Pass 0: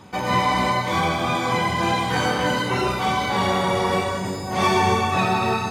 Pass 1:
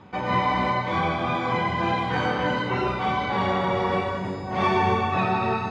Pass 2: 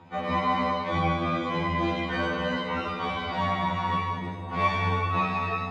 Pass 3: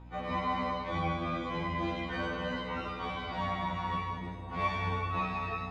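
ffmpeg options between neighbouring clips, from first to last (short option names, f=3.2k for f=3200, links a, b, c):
-af "lowpass=2.9k,volume=-2.5dB"
-af "afftfilt=real='re*2*eq(mod(b,4),0)':imag='im*2*eq(mod(b,4),0)':win_size=2048:overlap=0.75"
-af "aeval=exprs='val(0)+0.00891*(sin(2*PI*60*n/s)+sin(2*PI*2*60*n/s)/2+sin(2*PI*3*60*n/s)/3+sin(2*PI*4*60*n/s)/4+sin(2*PI*5*60*n/s)/5)':c=same,volume=-7dB"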